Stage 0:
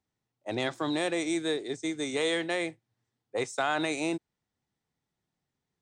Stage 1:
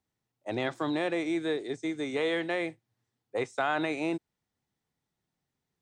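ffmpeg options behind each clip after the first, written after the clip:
ffmpeg -i in.wav -filter_complex "[0:a]acrossover=split=3300[link_01][link_02];[link_02]acompressor=threshold=-53dB:ratio=4:attack=1:release=60[link_03];[link_01][link_03]amix=inputs=2:normalize=0" out.wav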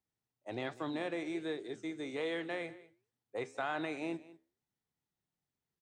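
ffmpeg -i in.wav -af "flanger=delay=5.6:depth=8.2:regen=-81:speed=1.3:shape=sinusoidal,aecho=1:1:197:0.112,volume=-3.5dB" out.wav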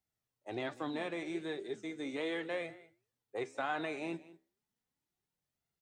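ffmpeg -i in.wav -af "flanger=delay=1.4:depth=3.9:regen=50:speed=0.35:shape=sinusoidal,volume=4.5dB" out.wav

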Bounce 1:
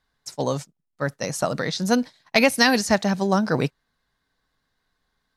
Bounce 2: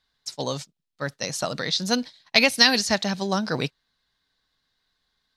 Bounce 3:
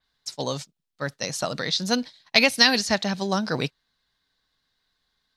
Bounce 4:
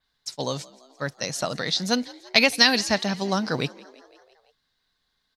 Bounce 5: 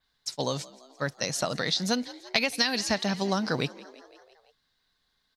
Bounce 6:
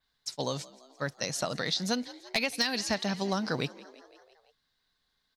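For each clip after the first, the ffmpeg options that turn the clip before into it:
ffmpeg -i in.wav -af "equalizer=frequency=3900:width=0.87:gain=11.5,volume=-5dB" out.wav
ffmpeg -i in.wav -af "adynamicequalizer=threshold=0.0251:dfrequency=4600:dqfactor=0.7:tfrequency=4600:tqfactor=0.7:attack=5:release=100:ratio=0.375:range=2:mode=cutabove:tftype=highshelf" out.wav
ffmpeg -i in.wav -filter_complex "[0:a]asplit=6[link_01][link_02][link_03][link_04][link_05][link_06];[link_02]adelay=169,afreqshift=62,volume=-22dB[link_07];[link_03]adelay=338,afreqshift=124,volume=-25.7dB[link_08];[link_04]adelay=507,afreqshift=186,volume=-29.5dB[link_09];[link_05]adelay=676,afreqshift=248,volume=-33.2dB[link_10];[link_06]adelay=845,afreqshift=310,volume=-37dB[link_11];[link_01][link_07][link_08][link_09][link_10][link_11]amix=inputs=6:normalize=0" out.wav
ffmpeg -i in.wav -af "acompressor=threshold=-23dB:ratio=4" out.wav
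ffmpeg -i in.wav -af "asoftclip=type=hard:threshold=-15dB,volume=-3dB" out.wav

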